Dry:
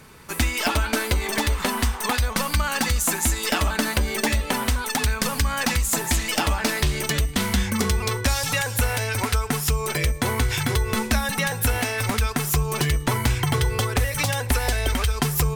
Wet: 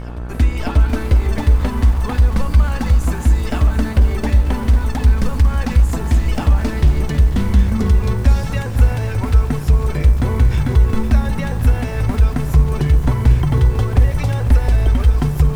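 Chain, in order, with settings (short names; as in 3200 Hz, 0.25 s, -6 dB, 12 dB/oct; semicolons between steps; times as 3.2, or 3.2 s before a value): reverse echo 0.587 s -16.5 dB; on a send at -14.5 dB: reverb RT60 3.0 s, pre-delay 4 ms; on the sum: buzz 60 Hz, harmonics 30, -36 dBFS -3 dB/oct; tilt -3.5 dB/oct; lo-fi delay 0.499 s, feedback 35%, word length 5-bit, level -11.5 dB; gain -3 dB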